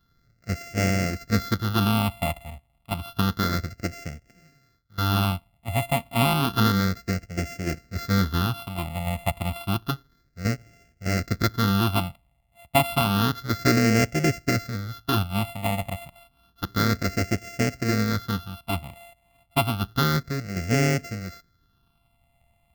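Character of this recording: a buzz of ramps at a fixed pitch in blocks of 64 samples; phasing stages 6, 0.3 Hz, lowest notch 400–1000 Hz

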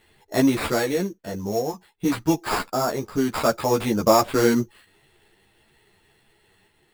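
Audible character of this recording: random-step tremolo 1.5 Hz; aliases and images of a low sample rate 6100 Hz, jitter 0%; a shimmering, thickened sound

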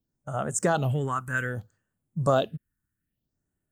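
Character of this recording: phasing stages 4, 0.62 Hz, lowest notch 580–4800 Hz

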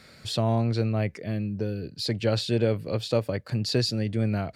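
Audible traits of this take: noise floor -52 dBFS; spectral tilt -6.0 dB/oct

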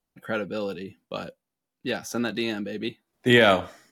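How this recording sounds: noise floor -85 dBFS; spectral tilt -3.0 dB/oct

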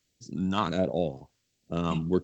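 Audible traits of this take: phasing stages 2, 1.4 Hz, lowest notch 510–1100 Hz

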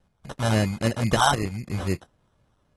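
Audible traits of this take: phasing stages 4, 3.8 Hz, lowest notch 350–1600 Hz; aliases and images of a low sample rate 2300 Hz, jitter 0%; AAC

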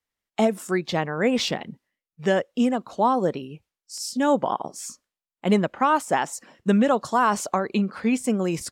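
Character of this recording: noise floor -92 dBFS; spectral tilt -5.0 dB/oct

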